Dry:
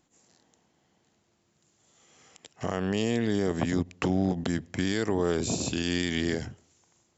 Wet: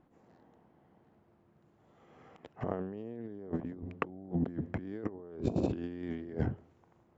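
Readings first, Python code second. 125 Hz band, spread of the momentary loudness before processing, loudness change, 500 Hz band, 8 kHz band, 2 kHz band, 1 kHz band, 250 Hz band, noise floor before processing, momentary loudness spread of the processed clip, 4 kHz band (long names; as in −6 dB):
−6.0 dB, 5 LU, −9.0 dB, −9.5 dB, can't be measured, −14.5 dB, −7.5 dB, −8.5 dB, −71 dBFS, 10 LU, below −25 dB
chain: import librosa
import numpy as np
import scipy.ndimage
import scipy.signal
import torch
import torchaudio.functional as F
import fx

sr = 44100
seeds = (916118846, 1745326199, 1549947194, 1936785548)

y = scipy.signal.sosfilt(scipy.signal.butter(2, 1200.0, 'lowpass', fs=sr, output='sos'), x)
y = fx.dynamic_eq(y, sr, hz=370.0, q=0.84, threshold_db=-39.0, ratio=4.0, max_db=5)
y = fx.over_compress(y, sr, threshold_db=-32.0, ratio=-0.5)
y = y * librosa.db_to_amplitude(-3.0)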